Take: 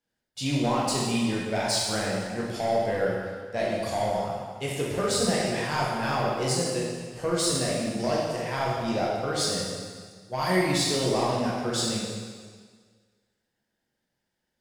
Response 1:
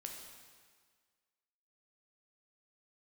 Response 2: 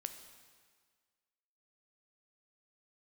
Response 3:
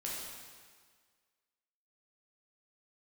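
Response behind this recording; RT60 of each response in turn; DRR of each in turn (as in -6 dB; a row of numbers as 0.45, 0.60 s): 3; 1.7, 1.7, 1.7 s; 1.5, 7.5, -5.0 dB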